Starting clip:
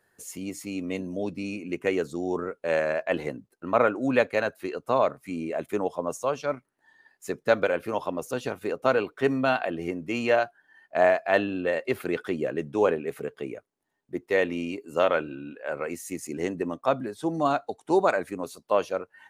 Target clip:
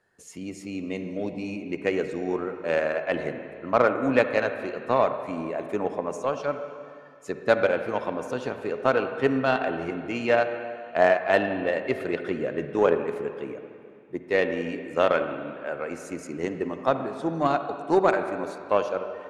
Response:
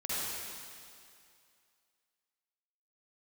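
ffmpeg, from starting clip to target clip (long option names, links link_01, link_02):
-filter_complex "[0:a]lowpass=7300,asplit=2[link_01][link_02];[1:a]atrim=start_sample=2205,lowpass=3100[link_03];[link_02][link_03]afir=irnorm=-1:irlink=0,volume=-10.5dB[link_04];[link_01][link_04]amix=inputs=2:normalize=0,aeval=exprs='0.562*(cos(1*acos(clip(val(0)/0.562,-1,1)))-cos(1*PI/2))+0.02*(cos(7*acos(clip(val(0)/0.562,-1,1)))-cos(7*PI/2))':channel_layout=same"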